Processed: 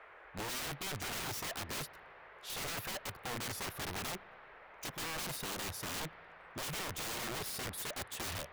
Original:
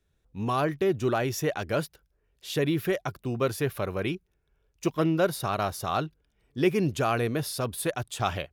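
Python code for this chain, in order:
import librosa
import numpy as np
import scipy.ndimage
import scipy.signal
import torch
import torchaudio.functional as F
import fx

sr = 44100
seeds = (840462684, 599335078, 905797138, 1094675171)

y = fx.dmg_noise_band(x, sr, seeds[0], low_hz=410.0, high_hz=2100.0, level_db=-50.0)
y = (np.mod(10.0 ** (29.0 / 20.0) * y + 1.0, 2.0) - 1.0) / 10.0 ** (29.0 / 20.0)
y = fx.rev_spring(y, sr, rt60_s=3.0, pass_ms=(31, 52), chirp_ms=50, drr_db=20.0)
y = y * 10.0 ** (-6.0 / 20.0)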